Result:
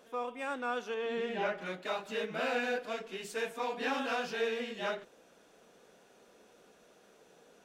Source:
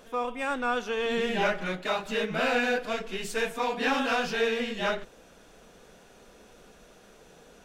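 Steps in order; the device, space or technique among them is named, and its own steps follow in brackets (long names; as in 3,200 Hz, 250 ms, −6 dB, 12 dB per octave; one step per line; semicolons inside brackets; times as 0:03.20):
0:00.94–0:01.58: high-shelf EQ 5,000 Hz −11.5 dB
filter by subtraction (in parallel: low-pass filter 370 Hz 12 dB per octave + polarity inversion)
on the sum: level −8 dB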